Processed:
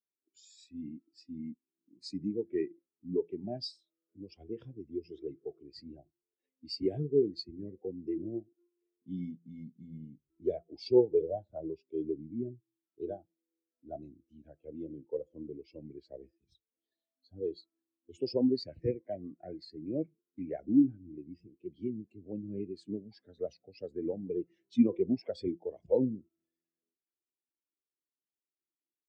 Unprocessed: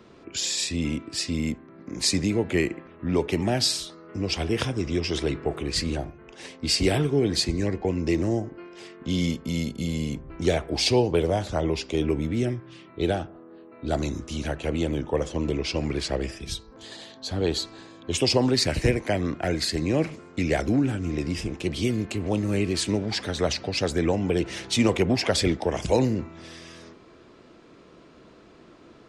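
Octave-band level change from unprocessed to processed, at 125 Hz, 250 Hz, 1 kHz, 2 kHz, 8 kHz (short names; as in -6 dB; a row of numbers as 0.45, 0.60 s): -18.0 dB, -8.0 dB, -20.0 dB, under -30 dB, under -30 dB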